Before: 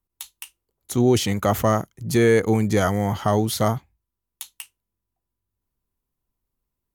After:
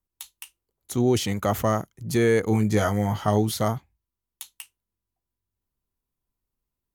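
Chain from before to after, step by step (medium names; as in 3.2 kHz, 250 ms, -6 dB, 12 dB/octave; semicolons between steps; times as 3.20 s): 2.49–3.52 s: doubling 19 ms -6.5 dB; trim -3.5 dB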